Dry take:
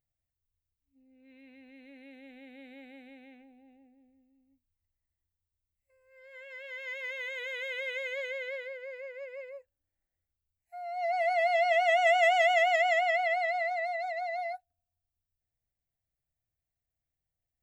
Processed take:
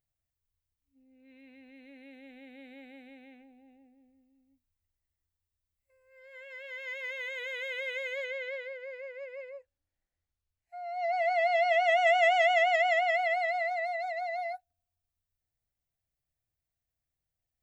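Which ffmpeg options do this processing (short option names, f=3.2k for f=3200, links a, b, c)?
-filter_complex "[0:a]asettb=1/sr,asplit=3[a][b][c];[a]atrim=end=8.244[d];[b]atrim=start=8.24:end=13.1,asetpts=PTS-STARTPTS,afade=t=in:d=0.004:c=qsin,afade=t=out:st=4.856:d=0.004:c=qsin,lowpass=6.6k[e];[c]atrim=start=13.096[f];[d][e]acrossfade=d=0.004:c1=hsin:c2=qsin[g];[g][f]acrossfade=d=0.004:c1=qsin:c2=hsin"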